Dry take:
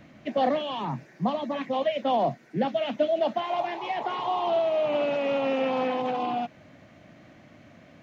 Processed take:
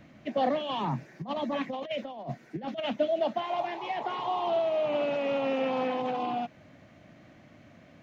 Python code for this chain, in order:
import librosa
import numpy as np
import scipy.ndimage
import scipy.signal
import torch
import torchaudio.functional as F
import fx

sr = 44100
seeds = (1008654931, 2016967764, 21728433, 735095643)

y = fx.low_shelf(x, sr, hz=140.0, db=2.5)
y = fx.over_compress(y, sr, threshold_db=-29.0, ratio=-0.5, at=(0.69, 2.93))
y = y * 10.0 ** (-3.0 / 20.0)